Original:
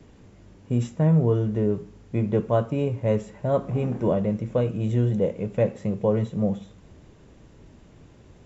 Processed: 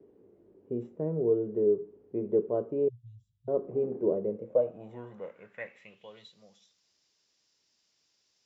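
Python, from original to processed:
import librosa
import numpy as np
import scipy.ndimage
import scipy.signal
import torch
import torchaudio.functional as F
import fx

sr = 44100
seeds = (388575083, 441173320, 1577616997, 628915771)

y = fx.cheby1_bandstop(x, sr, low_hz=130.0, high_hz=3300.0, order=5, at=(2.88, 3.48))
y = fx.filter_sweep_bandpass(y, sr, from_hz=400.0, to_hz=5100.0, start_s=4.27, end_s=6.46, q=4.8)
y = y * librosa.db_to_amplitude(3.0)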